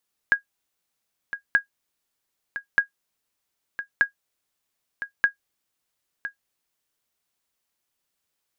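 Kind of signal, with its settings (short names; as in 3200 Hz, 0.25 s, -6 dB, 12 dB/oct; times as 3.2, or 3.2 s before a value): sonar ping 1640 Hz, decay 0.11 s, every 1.23 s, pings 5, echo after 1.01 s, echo -12.5 dB -8.5 dBFS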